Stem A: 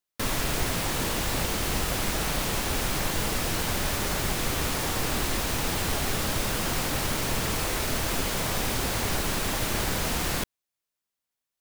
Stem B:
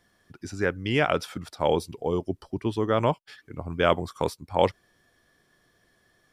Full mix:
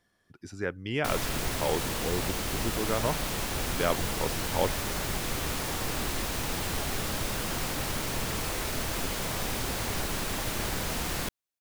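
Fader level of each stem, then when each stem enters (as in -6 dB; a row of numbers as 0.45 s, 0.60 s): -4.0 dB, -6.5 dB; 0.85 s, 0.00 s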